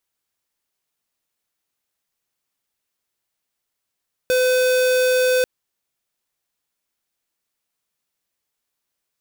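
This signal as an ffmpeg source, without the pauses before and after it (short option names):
-f lavfi -i "aevalsrc='0.141*(2*lt(mod(507*t,1),0.5)-1)':d=1.14:s=44100"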